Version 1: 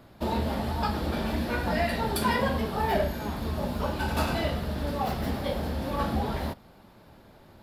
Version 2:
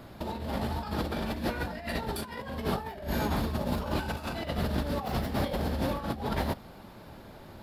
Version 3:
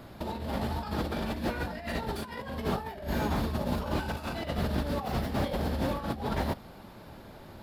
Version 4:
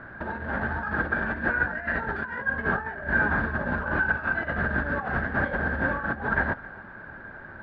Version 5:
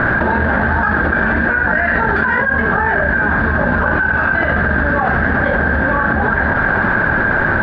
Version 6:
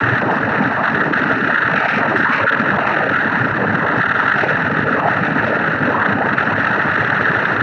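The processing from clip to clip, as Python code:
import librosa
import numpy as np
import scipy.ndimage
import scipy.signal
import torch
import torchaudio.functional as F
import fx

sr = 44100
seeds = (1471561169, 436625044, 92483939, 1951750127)

y1 = fx.over_compress(x, sr, threshold_db=-32.0, ratio=-0.5)
y1 = F.gain(torch.from_numpy(y1), 1.0).numpy()
y2 = fx.slew_limit(y1, sr, full_power_hz=46.0)
y3 = fx.lowpass_res(y2, sr, hz=1600.0, q=15.0)
y3 = y3 + 10.0 ** (-21.0 / 20.0) * np.pad(y3, (int(265 * sr / 1000.0), 0))[:len(y3)]
y4 = fx.env_flatten(y3, sr, amount_pct=100)
y4 = F.gain(torch.from_numpy(y4), 5.5).numpy()
y5 = fx.tracing_dist(y4, sr, depth_ms=0.032)
y5 = fx.noise_vocoder(y5, sr, seeds[0], bands=12)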